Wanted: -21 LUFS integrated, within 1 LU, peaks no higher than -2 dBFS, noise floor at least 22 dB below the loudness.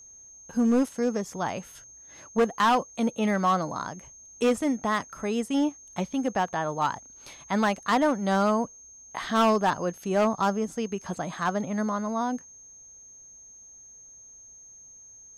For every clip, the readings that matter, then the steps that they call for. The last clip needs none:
clipped samples 1.0%; clipping level -17.0 dBFS; steady tone 6.4 kHz; tone level -47 dBFS; loudness -27.0 LUFS; peak level -17.0 dBFS; loudness target -21.0 LUFS
-> clip repair -17 dBFS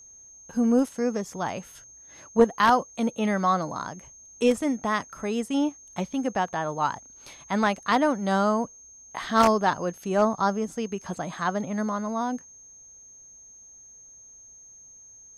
clipped samples 0.0%; steady tone 6.4 kHz; tone level -47 dBFS
-> band-stop 6.4 kHz, Q 30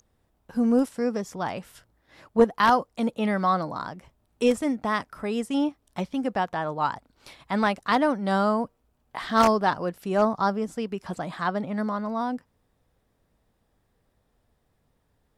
steady tone not found; loudness -26.0 LUFS; peak level -8.0 dBFS; loudness target -21.0 LUFS
-> trim +5 dB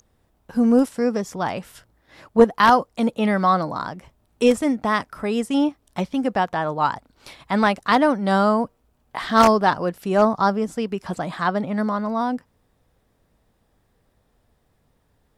loudness -21.0 LUFS; peak level -3.0 dBFS; noise floor -66 dBFS

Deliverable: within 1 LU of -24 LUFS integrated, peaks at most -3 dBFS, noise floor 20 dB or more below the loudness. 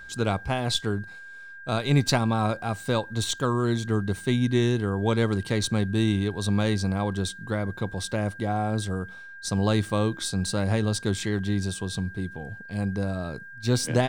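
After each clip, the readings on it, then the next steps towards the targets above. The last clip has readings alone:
steady tone 1.6 kHz; tone level -41 dBFS; loudness -26.5 LUFS; peak level -10.5 dBFS; loudness target -24.0 LUFS
-> band-stop 1.6 kHz, Q 30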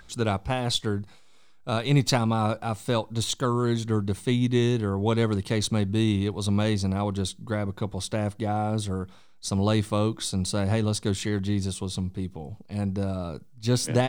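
steady tone not found; loudness -27.0 LUFS; peak level -10.5 dBFS; loudness target -24.0 LUFS
-> trim +3 dB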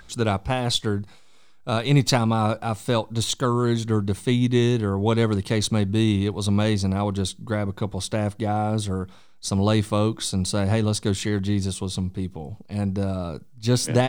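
loudness -24.0 LUFS; peak level -7.5 dBFS; noise floor -48 dBFS

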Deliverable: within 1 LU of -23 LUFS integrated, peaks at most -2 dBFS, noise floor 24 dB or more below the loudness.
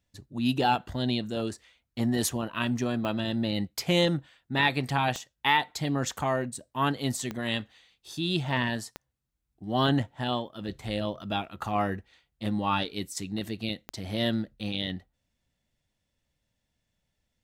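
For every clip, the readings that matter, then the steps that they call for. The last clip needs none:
clicks found 5; loudness -29.5 LUFS; peak level -11.0 dBFS; loudness target -23.0 LUFS
-> de-click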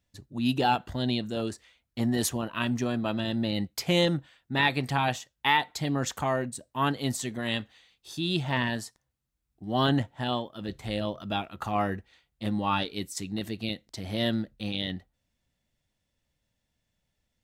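clicks found 0; loudness -29.5 LUFS; peak level -11.0 dBFS; loudness target -23.0 LUFS
-> trim +6.5 dB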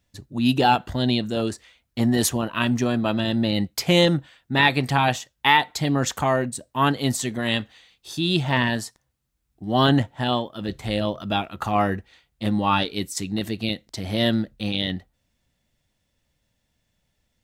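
loudness -23.0 LUFS; peak level -4.5 dBFS; noise floor -74 dBFS

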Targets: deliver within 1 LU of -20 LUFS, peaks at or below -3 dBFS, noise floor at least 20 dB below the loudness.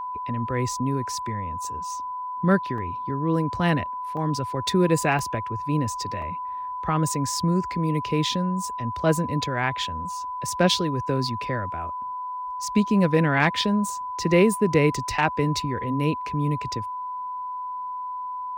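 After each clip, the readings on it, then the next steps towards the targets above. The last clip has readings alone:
dropouts 4; longest dropout 2.5 ms; steady tone 1 kHz; tone level -29 dBFS; loudness -25.0 LUFS; peak level -8.5 dBFS; loudness target -20.0 LUFS
-> interpolate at 2.78/4.17/5.19/6.22 s, 2.5 ms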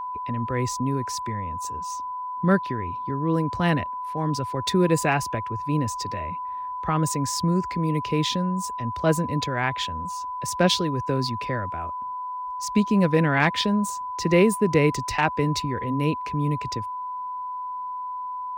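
dropouts 0; steady tone 1 kHz; tone level -29 dBFS
-> band-stop 1 kHz, Q 30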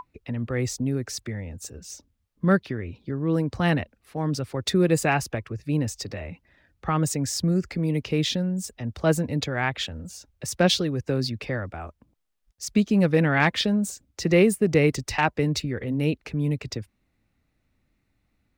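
steady tone not found; loudness -25.0 LUFS; peak level -9.0 dBFS; loudness target -20.0 LUFS
-> trim +5 dB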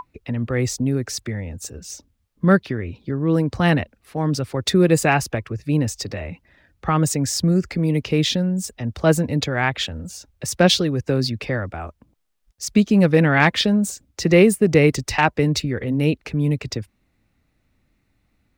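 loudness -20.0 LUFS; peak level -4.0 dBFS; noise floor -68 dBFS

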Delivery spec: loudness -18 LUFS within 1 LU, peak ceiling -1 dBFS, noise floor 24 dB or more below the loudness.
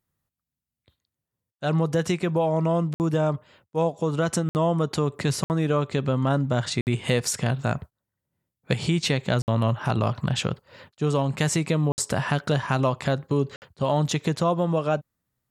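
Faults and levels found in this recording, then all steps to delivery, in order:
dropouts 7; longest dropout 59 ms; loudness -25.0 LUFS; peak level -6.5 dBFS; loudness target -18.0 LUFS
-> interpolate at 2.94/4.49/5.44/6.81/9.42/11.92/13.56 s, 59 ms; trim +7 dB; peak limiter -1 dBFS

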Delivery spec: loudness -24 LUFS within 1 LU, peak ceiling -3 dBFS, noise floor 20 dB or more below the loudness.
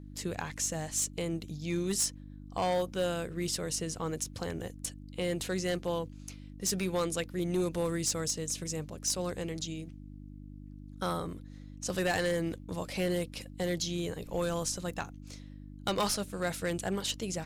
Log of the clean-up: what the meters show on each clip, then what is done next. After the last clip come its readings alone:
clipped samples 0.6%; clipping level -24.0 dBFS; hum 50 Hz; highest harmonic 300 Hz; hum level -45 dBFS; loudness -33.5 LUFS; peak level -24.0 dBFS; loudness target -24.0 LUFS
-> clip repair -24 dBFS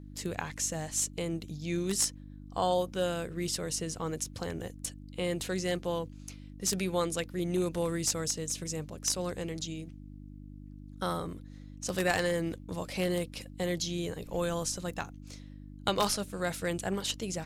clipped samples 0.0%; hum 50 Hz; highest harmonic 300 Hz; hum level -45 dBFS
-> de-hum 50 Hz, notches 6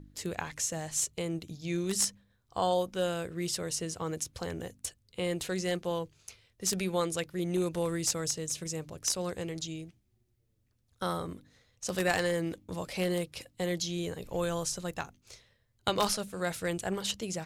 hum not found; loudness -33.0 LUFS; peak level -14.5 dBFS; loudness target -24.0 LUFS
-> trim +9 dB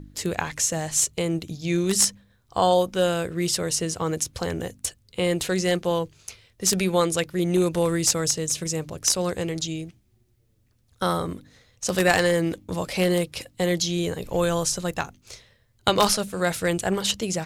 loudness -24.0 LUFS; peak level -5.5 dBFS; noise floor -64 dBFS

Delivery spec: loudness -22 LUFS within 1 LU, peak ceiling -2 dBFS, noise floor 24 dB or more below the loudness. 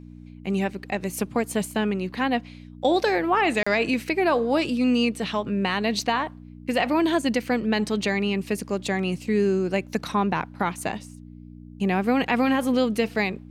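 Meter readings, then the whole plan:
dropouts 1; longest dropout 35 ms; hum 60 Hz; highest harmonic 300 Hz; hum level -41 dBFS; loudness -24.5 LUFS; peak level -10.0 dBFS; loudness target -22.0 LUFS
-> interpolate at 3.63 s, 35 ms; de-hum 60 Hz, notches 5; trim +2.5 dB

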